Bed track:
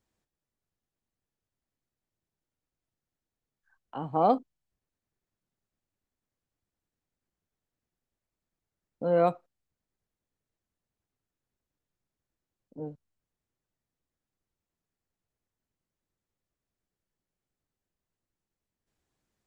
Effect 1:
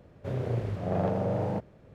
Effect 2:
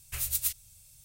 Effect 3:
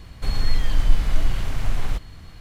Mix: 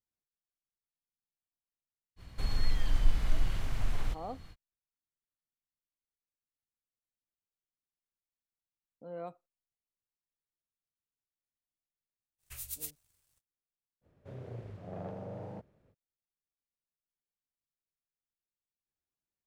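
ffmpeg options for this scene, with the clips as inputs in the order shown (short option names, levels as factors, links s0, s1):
-filter_complex "[0:a]volume=0.119[s0];[2:a]aeval=exprs='sgn(val(0))*max(abs(val(0))-0.00168,0)':c=same[s1];[3:a]atrim=end=2.4,asetpts=PTS-STARTPTS,volume=0.355,afade=t=in:d=0.05,afade=t=out:st=2.35:d=0.05,adelay=2160[s2];[s1]atrim=end=1.04,asetpts=PTS-STARTPTS,volume=0.282,afade=t=in:d=0.05,afade=t=out:st=0.99:d=0.05,adelay=12380[s3];[1:a]atrim=end=1.94,asetpts=PTS-STARTPTS,volume=0.2,afade=t=in:d=0.05,afade=t=out:st=1.89:d=0.05,adelay=14010[s4];[s0][s2][s3][s4]amix=inputs=4:normalize=0"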